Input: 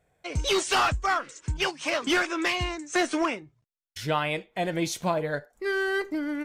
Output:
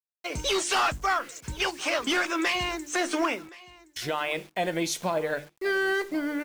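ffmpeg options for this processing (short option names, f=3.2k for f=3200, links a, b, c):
-filter_complex "[0:a]equalizer=f=84:t=o:w=1.7:g=-12,bandreject=f=50:t=h:w=6,bandreject=f=100:t=h:w=6,bandreject=f=150:t=h:w=6,bandreject=f=200:t=h:w=6,bandreject=f=250:t=h:w=6,bandreject=f=300:t=h:w=6,bandreject=f=350:t=h:w=6,alimiter=limit=-21dB:level=0:latency=1:release=81,acrusher=bits=8:mix=0:aa=0.000001,asplit=2[a][b];[b]aecho=0:1:1070:0.0841[c];[a][c]amix=inputs=2:normalize=0,volume=3dB"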